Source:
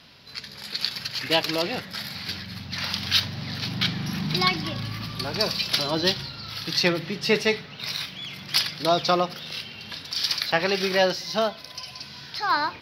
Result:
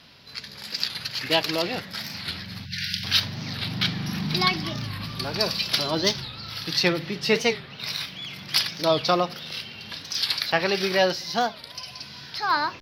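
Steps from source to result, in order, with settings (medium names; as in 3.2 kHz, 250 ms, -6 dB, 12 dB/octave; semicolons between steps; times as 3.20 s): spectral selection erased 2.65–3.04 s, 210–1400 Hz; warped record 45 rpm, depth 160 cents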